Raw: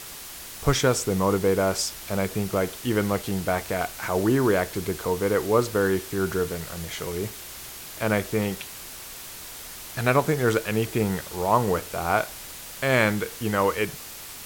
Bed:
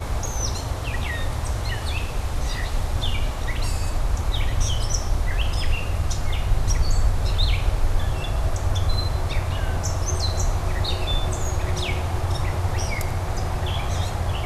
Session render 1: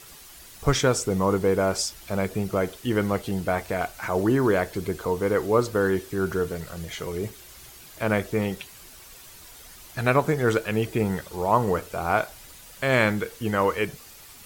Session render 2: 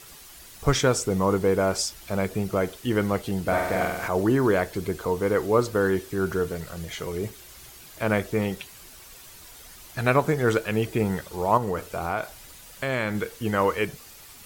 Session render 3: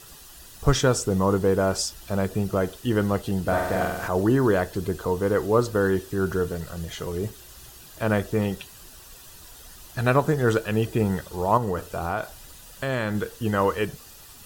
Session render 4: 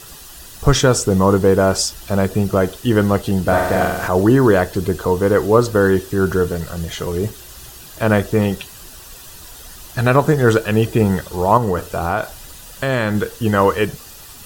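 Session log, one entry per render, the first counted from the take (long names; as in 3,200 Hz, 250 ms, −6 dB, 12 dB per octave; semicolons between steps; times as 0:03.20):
broadband denoise 9 dB, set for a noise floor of −40 dBFS
0:03.42–0:04.08: flutter between parallel walls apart 8.1 metres, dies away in 1 s; 0:11.57–0:13.15: downward compressor 2.5 to 1, threshold −24 dBFS
low-shelf EQ 140 Hz +5 dB; notch filter 2,200 Hz, Q 5.2
level +8 dB; brickwall limiter −1 dBFS, peak gain reduction 2.5 dB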